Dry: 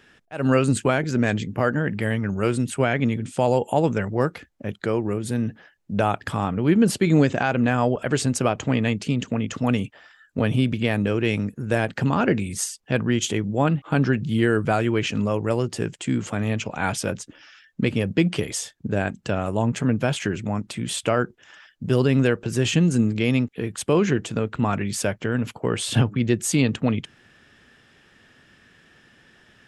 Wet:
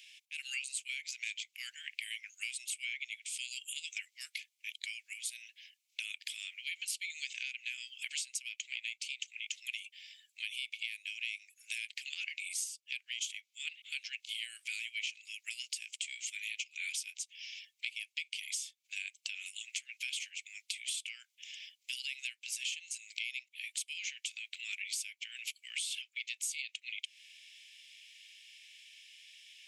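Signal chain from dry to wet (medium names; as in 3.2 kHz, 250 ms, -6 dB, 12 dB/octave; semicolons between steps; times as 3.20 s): Chebyshev high-pass 2.2 kHz, order 6; compression 6:1, threshold -43 dBFS, peak gain reduction 19 dB; trim +6 dB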